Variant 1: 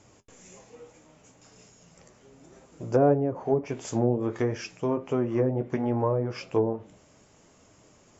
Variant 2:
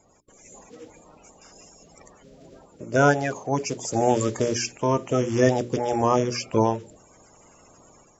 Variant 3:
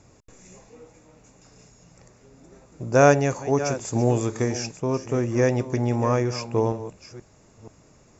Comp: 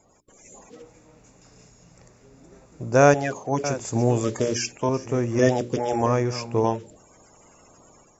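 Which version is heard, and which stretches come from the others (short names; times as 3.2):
2
0.82–3.14 from 3
3.64–4.24 from 3
4.89–5.39 from 3
6.06–6.64 from 3
not used: 1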